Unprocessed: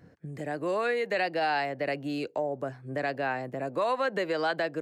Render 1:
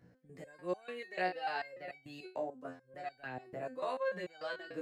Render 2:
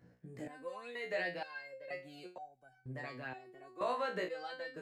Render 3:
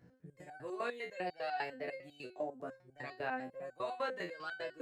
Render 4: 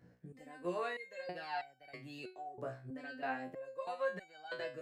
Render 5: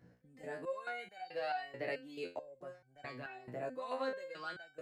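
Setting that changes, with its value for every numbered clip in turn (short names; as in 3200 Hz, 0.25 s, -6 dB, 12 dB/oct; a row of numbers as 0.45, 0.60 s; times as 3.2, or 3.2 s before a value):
stepped resonator, rate: 6.8, 2.1, 10, 3.1, 4.6 Hz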